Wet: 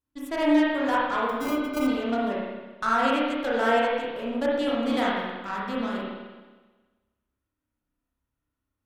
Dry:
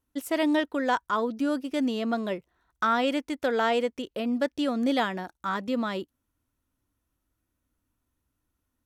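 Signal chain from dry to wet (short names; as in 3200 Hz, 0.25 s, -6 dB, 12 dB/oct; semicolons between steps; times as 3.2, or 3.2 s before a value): 1.29–1.87 sample-rate reducer 1800 Hz, jitter 0%; added harmonics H 4 -26 dB, 7 -23 dB, 8 -30 dB, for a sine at -13 dBFS; spring tank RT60 1.3 s, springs 30/53 ms, chirp 70 ms, DRR -6 dB; gain -4.5 dB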